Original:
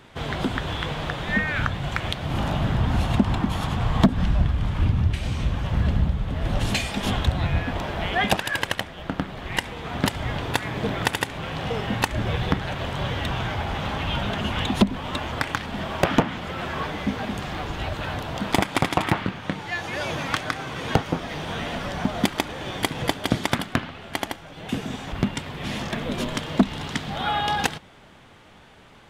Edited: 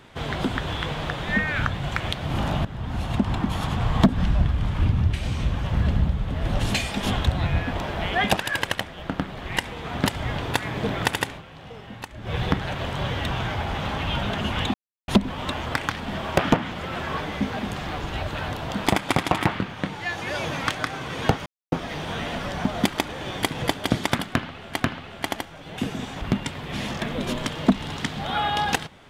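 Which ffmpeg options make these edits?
-filter_complex "[0:a]asplit=7[a][b][c][d][e][f][g];[a]atrim=end=2.65,asetpts=PTS-STARTPTS,afade=t=out:st=2.646:d=0.004:c=hsin:silence=0.16788[h];[b]atrim=start=2.65:end=11.43,asetpts=PTS-STARTPTS,afade=t=in:d=1.19:c=qsin:silence=0.16788,afade=t=out:st=8.62:d=0.16:silence=0.211349[i];[c]atrim=start=11.43:end=12.22,asetpts=PTS-STARTPTS,volume=-13.5dB[j];[d]atrim=start=12.22:end=14.74,asetpts=PTS-STARTPTS,afade=t=in:d=0.16:silence=0.211349,afade=t=out:st=2.516:d=0.004:c=hsin,apad=pad_dur=0.34[k];[e]atrim=start=14.74:end=21.12,asetpts=PTS-STARTPTS,afade=t=in:d=0.004:c=hsin,afade=t=out:st=6.376:d=0.004:c=hsin,apad=pad_dur=0.26[l];[f]atrim=start=21.12:end=24.202,asetpts=PTS-STARTPTS,afade=t=in:d=0.004:c=hsin[m];[g]atrim=start=23.708[n];[h][i][j][k][l][m]concat=n=6:v=0:a=1[o];[o][n]acrossfade=d=0.004:c1=hsin:c2=hsin"

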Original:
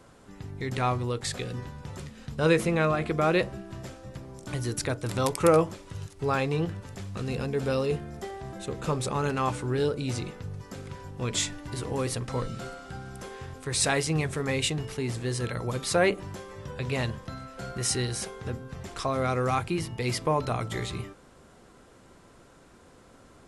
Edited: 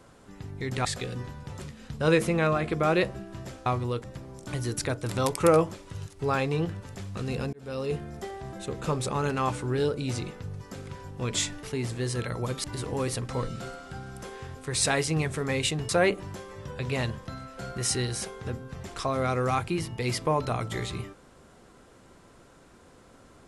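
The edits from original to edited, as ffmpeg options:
-filter_complex "[0:a]asplit=8[a][b][c][d][e][f][g][h];[a]atrim=end=0.852[i];[b]atrim=start=1.228:end=4.042[j];[c]atrim=start=0.848:end=1.232[k];[d]atrim=start=4.038:end=7.53,asetpts=PTS-STARTPTS,afade=t=out:st=3.488:d=0.004:c=hsin[l];[e]atrim=start=7.53:end=11.632,asetpts=PTS-STARTPTS,afade=t=in:d=0.48[m];[f]atrim=start=14.878:end=15.892[n];[g]atrim=start=11.628:end=14.882[o];[h]atrim=start=15.888[p];[i][j]acrossfade=d=0.004:c1=hsin:c2=hsin[q];[q][k]acrossfade=d=0.004:c1=hsin:c2=hsin[r];[l][m]concat=n=2:v=0:a=1[s];[r][s]acrossfade=d=0.004:c1=hsin:c2=hsin[t];[t][n]acrossfade=d=0.004:c1=hsin:c2=hsin[u];[u][o]acrossfade=d=0.004:c1=hsin:c2=hsin[v];[v][p]acrossfade=d=0.004:c1=hsin:c2=hsin"

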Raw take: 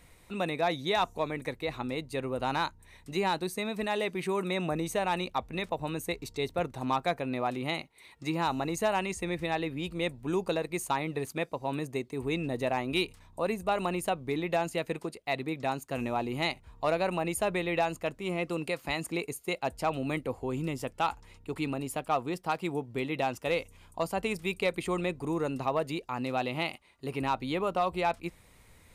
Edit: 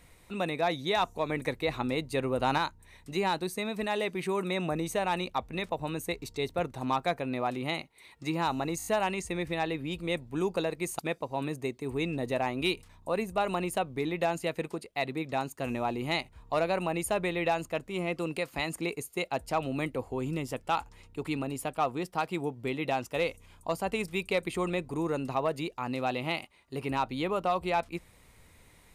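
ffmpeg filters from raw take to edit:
-filter_complex "[0:a]asplit=8[a][b][c][d][e][f][g][h];[a]atrim=end=1.292[i];[b]atrim=start=1.288:end=2.582,asetpts=PTS-STARTPTS,volume=3.5dB[j];[c]atrim=start=2.578:end=8.802[k];[d]atrim=start=8.778:end=8.802[l];[e]atrim=start=8.778:end=8.802[m];[f]atrim=start=8.778:end=8.802[n];[g]atrim=start=8.778:end=10.912[o];[h]atrim=start=11.298[p];[i][j]acrossfade=d=0.004:c1=hsin:c2=hsin[q];[q][k]acrossfade=d=0.004:c1=hsin:c2=hsin[r];[r][l]acrossfade=d=0.004:c1=hsin:c2=hsin[s];[s][m]acrossfade=d=0.004:c1=hsin:c2=hsin[t];[t][n]acrossfade=d=0.004:c1=hsin:c2=hsin[u];[u][o]acrossfade=d=0.004:c1=hsin:c2=hsin[v];[v][p]acrossfade=d=0.004:c1=hsin:c2=hsin"

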